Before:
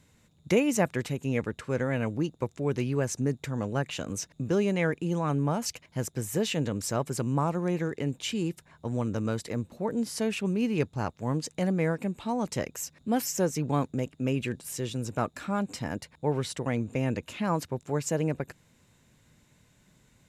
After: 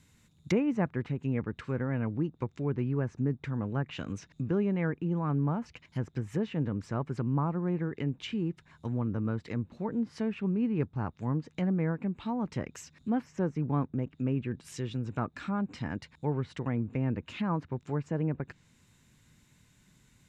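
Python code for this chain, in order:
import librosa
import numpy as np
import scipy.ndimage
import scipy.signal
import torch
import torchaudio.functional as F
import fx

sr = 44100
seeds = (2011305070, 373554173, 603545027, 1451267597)

y = fx.peak_eq(x, sr, hz=580.0, db=-8.5, octaves=1.1)
y = fx.env_lowpass_down(y, sr, base_hz=1300.0, full_db=-28.0)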